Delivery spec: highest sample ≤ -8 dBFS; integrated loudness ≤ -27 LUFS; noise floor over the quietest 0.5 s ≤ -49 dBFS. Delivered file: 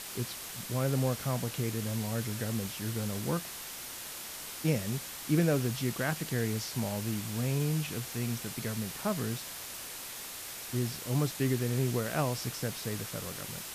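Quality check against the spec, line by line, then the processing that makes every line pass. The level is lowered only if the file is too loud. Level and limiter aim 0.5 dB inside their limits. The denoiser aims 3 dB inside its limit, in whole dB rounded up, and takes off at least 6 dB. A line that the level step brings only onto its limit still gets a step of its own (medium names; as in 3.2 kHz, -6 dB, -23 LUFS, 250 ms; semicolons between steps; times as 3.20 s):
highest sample -15.5 dBFS: pass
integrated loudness -33.5 LUFS: pass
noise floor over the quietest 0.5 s -43 dBFS: fail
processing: noise reduction 9 dB, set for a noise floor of -43 dBFS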